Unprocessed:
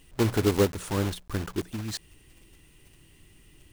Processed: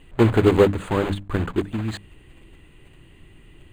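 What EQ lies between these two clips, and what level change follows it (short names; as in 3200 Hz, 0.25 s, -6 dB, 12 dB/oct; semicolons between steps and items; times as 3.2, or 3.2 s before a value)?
running mean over 8 samples; notches 50/100/150/200/250/300 Hz; +8.5 dB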